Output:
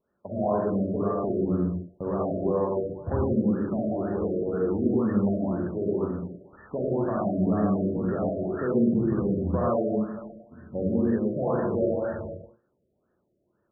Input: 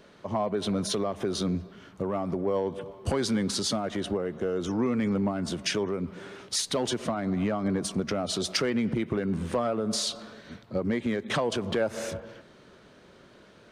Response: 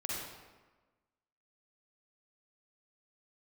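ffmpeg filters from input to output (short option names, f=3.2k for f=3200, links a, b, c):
-filter_complex "[0:a]agate=range=-22dB:threshold=-41dB:ratio=16:detection=peak,lowpass=2.4k[a];[1:a]atrim=start_sample=2205,afade=t=out:st=0.34:d=0.01,atrim=end_sample=15435[b];[a][b]afir=irnorm=-1:irlink=0,afftfilt=real='re*lt(b*sr/1024,660*pow(1900/660,0.5+0.5*sin(2*PI*2*pts/sr)))':imag='im*lt(b*sr/1024,660*pow(1900/660,0.5+0.5*sin(2*PI*2*pts/sr)))':win_size=1024:overlap=0.75"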